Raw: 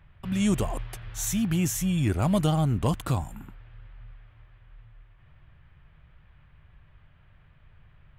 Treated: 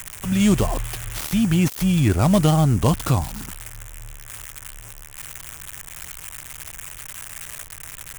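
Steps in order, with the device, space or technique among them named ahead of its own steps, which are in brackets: budget class-D amplifier (dead-time distortion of 0.11 ms; zero-crossing glitches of -22.5 dBFS); trim +7 dB

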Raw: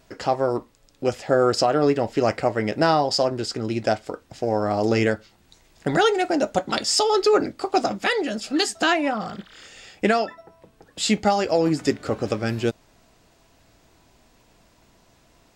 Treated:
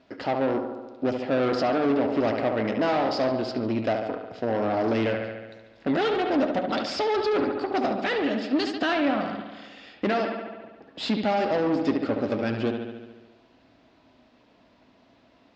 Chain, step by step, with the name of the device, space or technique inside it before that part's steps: analogue delay pedal into a guitar amplifier (bucket-brigade echo 71 ms, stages 2048, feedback 68%, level -9 dB; valve stage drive 22 dB, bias 0.55; cabinet simulation 80–4400 Hz, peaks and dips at 84 Hz -7 dB, 150 Hz -6 dB, 260 Hz +9 dB, 610 Hz +4 dB)

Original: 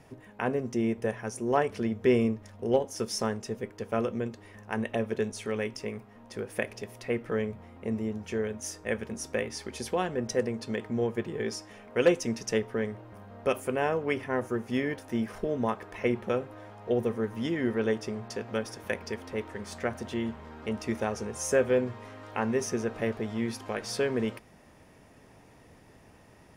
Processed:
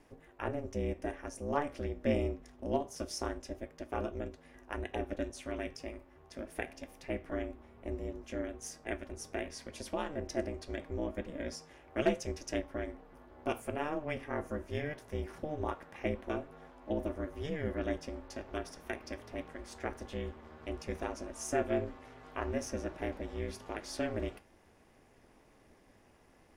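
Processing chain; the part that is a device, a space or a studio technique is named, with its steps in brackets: alien voice (ring modulator 150 Hz; flange 0.24 Hz, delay 7.7 ms, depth 6.1 ms, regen -80%)

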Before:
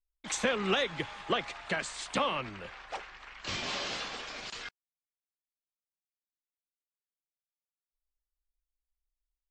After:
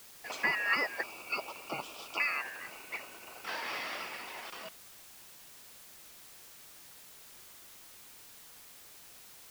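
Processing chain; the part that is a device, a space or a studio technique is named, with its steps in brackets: 1.03–2.20 s: steep high-pass 800 Hz 48 dB/octave; split-band scrambled radio (four frequency bands reordered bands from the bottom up 2143; band-pass 360–3000 Hz; white noise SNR 13 dB)

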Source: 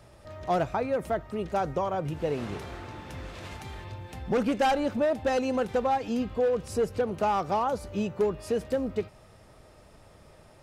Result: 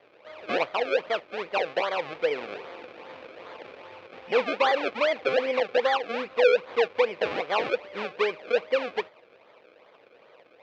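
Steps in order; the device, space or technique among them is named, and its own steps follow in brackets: circuit-bent sampling toy (decimation with a swept rate 32×, swing 100% 2.5 Hz; cabinet simulation 450–4100 Hz, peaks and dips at 490 Hz +9 dB, 1.1 kHz +3 dB, 2.4 kHz +8 dB)

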